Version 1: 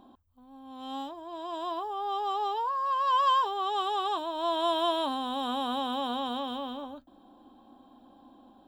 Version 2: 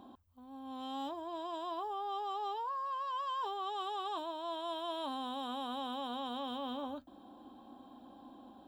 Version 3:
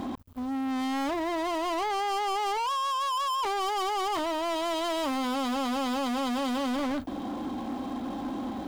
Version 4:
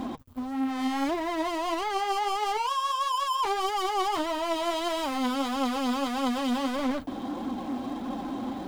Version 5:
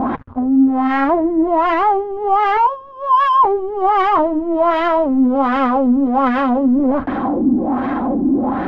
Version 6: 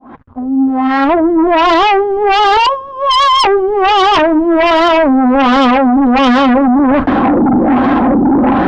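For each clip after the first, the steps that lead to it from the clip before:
high-pass filter 44 Hz; reversed playback; downward compressor 6 to 1, threshold −38 dBFS, peak gain reduction 16 dB; reversed playback; level +1 dB
low-shelf EQ 400 Hz +7.5 dB; leveller curve on the samples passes 5
flanger 1.6 Hz, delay 3.6 ms, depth 5.3 ms, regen +39%; level +4.5 dB
leveller curve on the samples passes 2; auto-filter low-pass sine 1.3 Hz 290–1,800 Hz; level +8.5 dB
fade in at the beginning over 1.72 s; harmonic generator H 5 −6 dB, 6 −17 dB, 8 −20 dB, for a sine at −5 dBFS

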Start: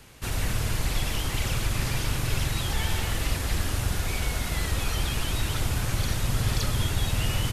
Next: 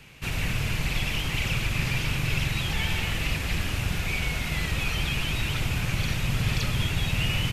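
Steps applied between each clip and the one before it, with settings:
graphic EQ with 15 bands 160 Hz +8 dB, 2,500 Hz +11 dB, 10,000 Hz −5 dB
level −2.5 dB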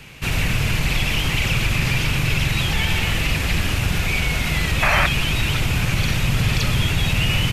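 in parallel at +1.5 dB: brickwall limiter −20 dBFS, peak gain reduction 7.5 dB
on the sum: sound drawn into the spectrogram noise, 0:04.82–0:05.07, 550–2,700 Hz −20 dBFS
level +1.5 dB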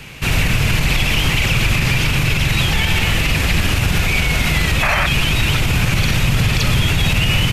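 brickwall limiter −12.5 dBFS, peak gain reduction 8 dB
level +6 dB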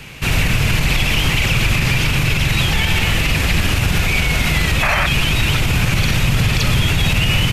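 no processing that can be heard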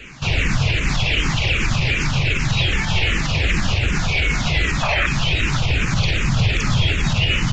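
downsampling to 16,000 Hz
frequency shifter mixed with the dry sound −2.6 Hz

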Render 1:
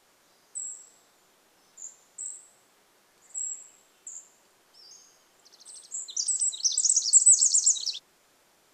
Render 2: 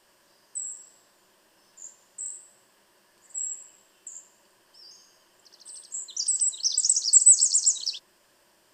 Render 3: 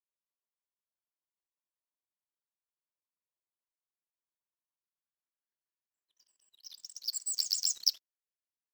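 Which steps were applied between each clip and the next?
EQ curve with evenly spaced ripples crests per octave 1.3, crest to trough 7 dB
low-pass filter sweep 1,100 Hz → 6,500 Hz, 0:04.59–0:08.09; power curve on the samples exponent 2

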